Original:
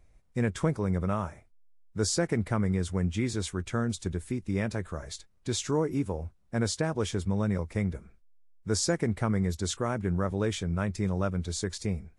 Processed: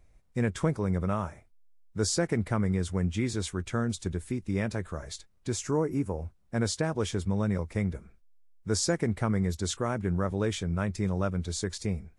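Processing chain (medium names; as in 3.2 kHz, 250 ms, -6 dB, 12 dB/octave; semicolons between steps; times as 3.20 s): 5.49–6.18 s: peaking EQ 3.6 kHz -10.5 dB 0.7 oct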